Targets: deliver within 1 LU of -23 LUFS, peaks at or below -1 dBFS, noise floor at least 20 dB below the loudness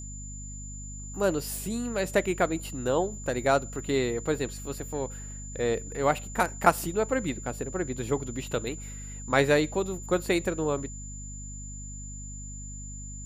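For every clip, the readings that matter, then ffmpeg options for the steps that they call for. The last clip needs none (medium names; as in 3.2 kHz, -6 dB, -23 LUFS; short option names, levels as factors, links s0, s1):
hum 50 Hz; highest harmonic 250 Hz; hum level -38 dBFS; steady tone 7.1 kHz; tone level -42 dBFS; loudness -29.0 LUFS; peak level -5.0 dBFS; loudness target -23.0 LUFS
-> -af "bandreject=f=50:t=h:w=6,bandreject=f=100:t=h:w=6,bandreject=f=150:t=h:w=6,bandreject=f=200:t=h:w=6,bandreject=f=250:t=h:w=6"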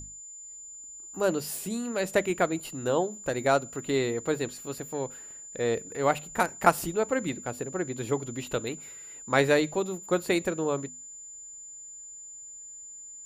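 hum not found; steady tone 7.1 kHz; tone level -42 dBFS
-> -af "bandreject=f=7100:w=30"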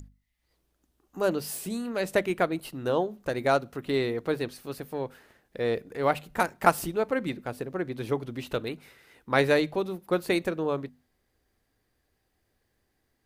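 steady tone not found; loudness -29.0 LUFS; peak level -5.0 dBFS; loudness target -23.0 LUFS
-> -af "volume=2,alimiter=limit=0.891:level=0:latency=1"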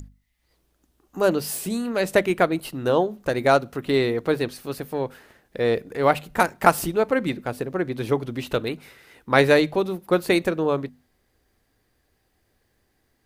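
loudness -23.0 LUFS; peak level -1.0 dBFS; noise floor -69 dBFS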